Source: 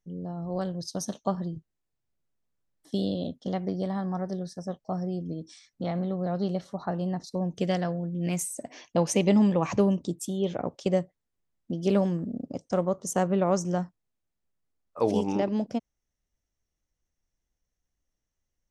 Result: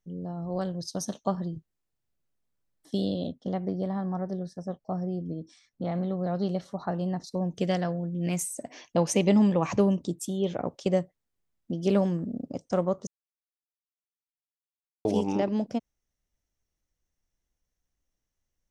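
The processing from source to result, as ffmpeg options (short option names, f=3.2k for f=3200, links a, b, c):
-filter_complex "[0:a]asettb=1/sr,asplit=3[a][b][c];[a]atrim=end=3.324[d];[b]atrim=start=3.32:end=5.92,asetpts=PTS-STARTPTS,afade=t=in:d=0.004:c=qsin,afade=t=out:st=2.596:d=0.004:c=qsin,highshelf=f=2.2k:g=-9[e];[c]atrim=start=5.916[f];[d][e]acrossfade=d=0.004:c1=hsin:c2=qsin[g];[g][f]acrossfade=d=0.004:c1=qsin:c2=hsin,asplit=3[h][i][j];[h]atrim=end=13.07,asetpts=PTS-STARTPTS,afade=t=out:st=13.066:d=0.004:c=hsin[k];[i]atrim=start=13.07:end=15.05,asetpts=PTS-STARTPTS,volume=0[l];[j]atrim=start=15.05,asetpts=PTS-STARTPTS,afade=t=in:d=0.004:c=hsin[m];[k][l][m]concat=n=3:v=0:a=1"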